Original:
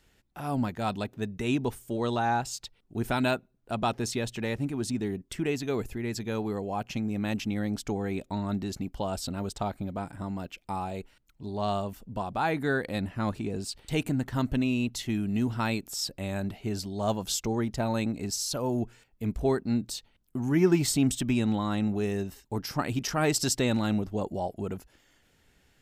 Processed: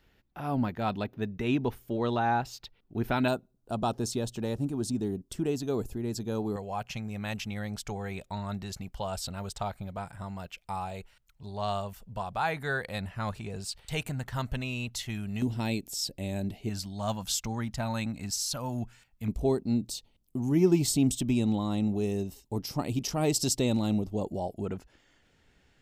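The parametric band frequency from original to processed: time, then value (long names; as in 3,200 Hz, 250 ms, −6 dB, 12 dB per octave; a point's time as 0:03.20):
parametric band −15 dB 0.9 octaves
8,200 Hz
from 0:03.28 2,100 Hz
from 0:06.56 290 Hz
from 0:15.42 1,300 Hz
from 0:16.69 390 Hz
from 0:19.28 1,600 Hz
from 0:24.65 13,000 Hz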